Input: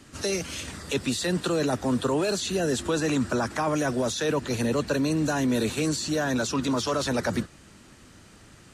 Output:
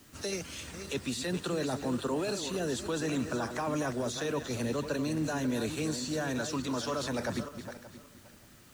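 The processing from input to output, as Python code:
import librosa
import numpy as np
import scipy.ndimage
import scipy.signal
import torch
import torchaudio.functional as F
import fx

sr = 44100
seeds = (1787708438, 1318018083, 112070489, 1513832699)

y = fx.reverse_delay_fb(x, sr, ms=288, feedback_pct=40, wet_db=-9.0)
y = fx.dmg_noise_colour(y, sr, seeds[0], colour='white', level_db=-55.0)
y = F.gain(torch.from_numpy(y), -7.5).numpy()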